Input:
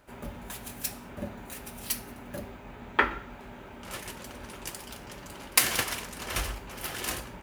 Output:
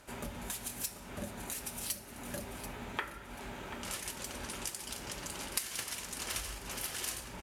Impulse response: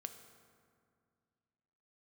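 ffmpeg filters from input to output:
-af "lowpass=8.9k,aemphasis=mode=production:type=75kf,acompressor=threshold=-39dB:ratio=4,aecho=1:1:736|1472|2208:0.251|0.0754|0.0226,volume=1dB"

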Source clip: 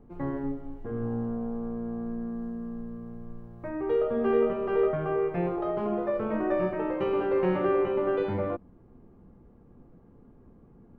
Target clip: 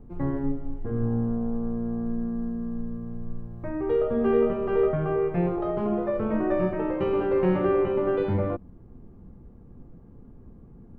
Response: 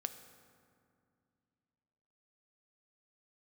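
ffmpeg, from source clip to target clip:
-af "lowshelf=f=210:g=10"

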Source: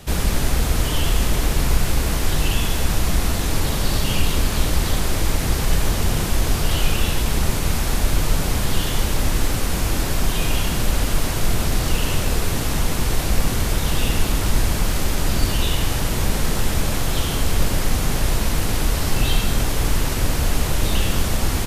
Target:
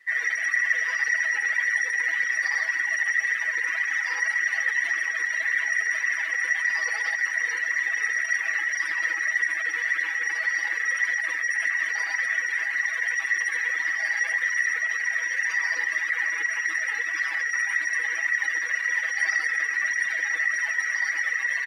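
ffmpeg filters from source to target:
-filter_complex "[0:a]aeval=exprs='val(0)*sin(2*PI*1900*n/s)':c=same,asoftclip=type=tanh:threshold=-17.5dB,areverse,acompressor=mode=upward:threshold=-30dB:ratio=2.5,areverse,lowpass=f=3.1k:p=1,asplit=2[a][b];[b]adelay=80,highpass=300,lowpass=3.4k,asoftclip=type=hard:threshold=-27.5dB,volume=-6dB[c];[a][c]amix=inputs=2:normalize=0,flanger=delay=0.4:depth=2.1:regen=66:speed=1.8:shape=triangular,highpass=f=200:w=0.5412,highpass=f=200:w=1.3066,highshelf=f=2.1k:g=5,aecho=1:1:6.1:0.92,afftdn=nr=19:nf=-32"

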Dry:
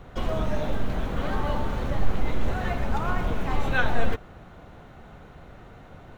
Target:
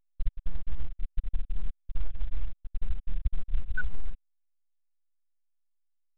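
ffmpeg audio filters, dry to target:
-filter_complex "[0:a]asettb=1/sr,asplit=3[a][b][c];[a]atrim=end=1.384[d];[b]atrim=start=1.38:end=3.22,asetpts=PTS-STARTPTS,afade=t=in:d=0.004:c=qsin,afade=t=out:st=1.836:d=0.004:c=qsin,lowpass=f=1.8k:w=0.5412,lowpass=f=1.8k:w=1.3066[e];[c]atrim=start=3.216[f];[d][e]acrossfade=d=0.004:c1=hsin:c2=qsin[g];[g][f]acrossfade=d=0.004:c1=qsin:c2=hsin,afftfilt=real='re*gte(hypot(re,im),1)':imag='im*gte(hypot(re,im),1)':win_size=1024:overlap=0.75,acompressor=threshold=-31dB:ratio=10,volume=11.5dB" -ar 8000 -c:a pcm_alaw

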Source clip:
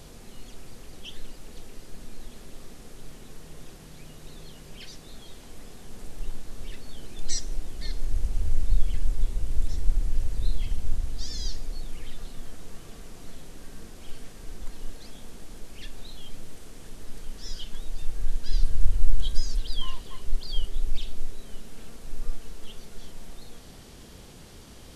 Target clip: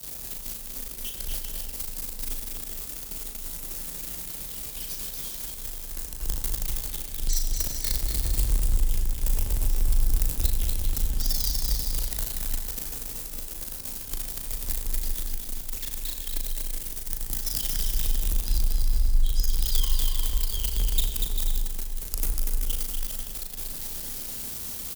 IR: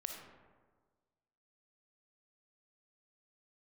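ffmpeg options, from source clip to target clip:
-filter_complex "[0:a]aeval=exprs='val(0)+0.5*0.0891*sgn(val(0))':c=same,agate=range=-33dB:threshold=-15dB:ratio=3:detection=peak,aemphasis=mode=production:type=75fm,alimiter=limit=-10.5dB:level=0:latency=1:release=492,asplit=2[a][b];[1:a]atrim=start_sample=2205,asetrate=57330,aresample=44100,adelay=37[c];[b][c]afir=irnorm=-1:irlink=0,volume=0.5dB[d];[a][d]amix=inputs=2:normalize=0,acompressor=threshold=-20dB:ratio=6,afreqshift=18,aecho=1:1:240|396|497.4|563.3|606.2:0.631|0.398|0.251|0.158|0.1"

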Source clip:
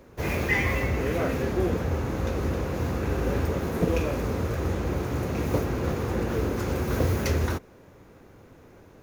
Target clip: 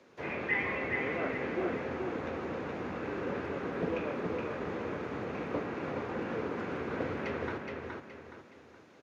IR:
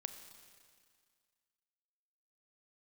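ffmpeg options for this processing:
-filter_complex "[0:a]highshelf=f=2.1k:g=10.5,acrossover=split=260|440|2600[a][b][c][d];[d]acompressor=threshold=-53dB:ratio=12[e];[a][b][c][e]amix=inputs=4:normalize=0,highpass=200,lowpass=4.5k,aecho=1:1:420|840|1260|1680|2100:0.631|0.227|0.0818|0.0294|0.0106,volume=-8dB"

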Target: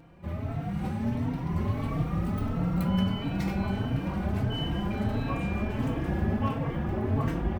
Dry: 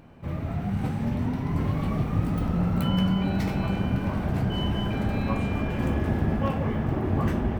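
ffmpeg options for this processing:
-filter_complex "[0:a]asplit=2[a][b];[b]adelay=3.9,afreqshift=1.5[c];[a][c]amix=inputs=2:normalize=1"

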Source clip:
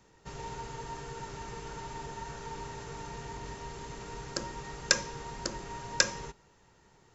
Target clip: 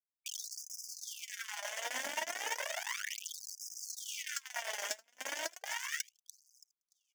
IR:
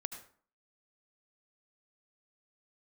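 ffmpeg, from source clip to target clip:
-filter_complex "[0:a]asplit=2[a][b];[b]acrusher=bits=5:mode=log:mix=0:aa=0.000001,volume=-6dB[c];[a][c]amix=inputs=2:normalize=0,acompressor=threshold=-38dB:ratio=12,acrusher=bits=5:mix=0:aa=0.000001,equalizer=f=2.4k:t=o:w=2.2:g=13.5,asettb=1/sr,asplit=3[d][e][f];[d]atrim=end=1.154[g];[e]atrim=start=1.15:end=1.84,asetpts=PTS-STARTPTS,afade=t=in:d=0.004:c=qsin,afade=t=out:st=0.686:d=0.004:c=qsin,aeval=exprs='val(0)*sin(2*PI*350*n/s)':c=same[h];[f]atrim=start=1.836[i];[g][h]acrossfade=d=0.004:c1=hsin:c2=qsin[j];[j][i]acrossfade=d=0.004:c1=qsin:c2=hsin,equalizer=f=400:t=o:w=0.33:g=-10,equalizer=f=630:t=o:w=0.33:g=9,equalizer=f=1.25k:t=o:w=0.33:g=-9,equalizer=f=2.5k:t=o:w=0.33:g=-7,equalizer=f=4k:t=o:w=0.33:g=-12,equalizer=f=6.3k:t=o:w=0.33:g=6,asoftclip=type=tanh:threshold=-27dB,acompressor=mode=upward:threshold=-38dB:ratio=2.5,aecho=1:1:624|1248:0.0841|0.0126,aphaser=in_gain=1:out_gain=1:delay=5:decay=0.67:speed=0.31:type=triangular,afftfilt=real='re*gte(b*sr/1024,200*pow(4900/200,0.5+0.5*sin(2*PI*0.34*pts/sr)))':imag='im*gte(b*sr/1024,200*pow(4900/200,0.5+0.5*sin(2*PI*0.34*pts/sr)))':win_size=1024:overlap=0.75,volume=-1dB"

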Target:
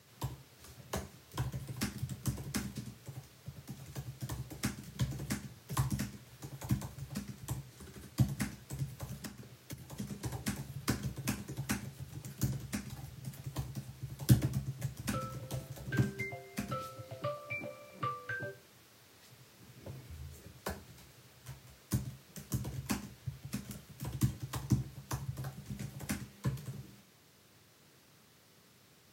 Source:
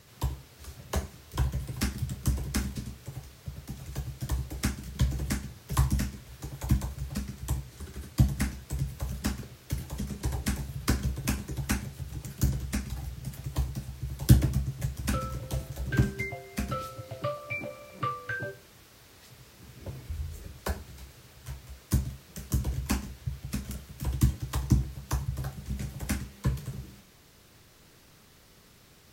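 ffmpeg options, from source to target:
-filter_complex "[0:a]highpass=f=92:w=0.5412,highpass=f=92:w=1.3066,asettb=1/sr,asplit=3[a][b][c];[a]atrim=end=9.224[d];[b]atrim=start=9.22:end=9.97,asetpts=PTS-STARTPTS,afade=t=in:d=0.004:c=qsin,afade=t=out:st=0.746:d=0.004:c=qsin,acompressor=threshold=-36dB:ratio=12[e];[c]atrim=start=9.966[f];[d][e]acrossfade=d=0.004:c1=hsin:c2=qsin[g];[g][f]acrossfade=d=0.004:c1=qsin:c2=hsin,volume=-5.5dB"

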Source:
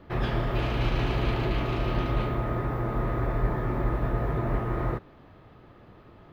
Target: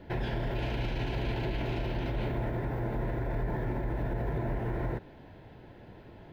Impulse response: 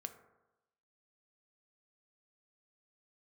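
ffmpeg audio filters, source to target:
-af "alimiter=level_in=1.5dB:limit=-24dB:level=0:latency=1:release=81,volume=-1.5dB,asuperstop=centerf=1200:order=4:qfactor=3.9,volume=1.5dB"

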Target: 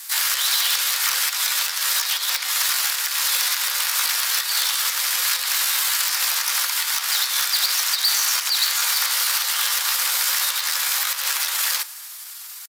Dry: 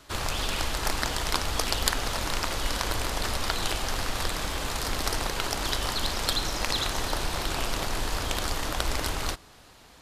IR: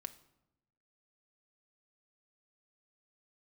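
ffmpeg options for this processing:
-filter_complex "[0:a]aemphasis=mode=production:type=riaa,acrossover=split=4800[a][b];[b]acompressor=threshold=-30dB:ratio=4:attack=1:release=60[c];[a][c]amix=inputs=2:normalize=0,aeval=exprs='clip(val(0),-1,0.112)':c=same,alimiter=limit=-14.5dB:level=0:latency=1:release=126,aeval=exprs='0.0891*(abs(mod(val(0)/0.0891+3,4)-2)-1)':c=same,atempo=0.79,lowshelf=f=240:g=-12,afreqshift=500,asplit=2[d][e];[e]adelay=270,highpass=300,lowpass=3.4k,asoftclip=type=hard:threshold=-25dB,volume=-27dB[f];[d][f]amix=inputs=2:normalize=0,asplit=2[g][h];[1:a]atrim=start_sample=2205,lowshelf=f=440:g=6.5,highshelf=f=6.3k:g=10[i];[h][i]afir=irnorm=-1:irlink=0,volume=2.5dB[j];[g][j]amix=inputs=2:normalize=0,volume=1.5dB"

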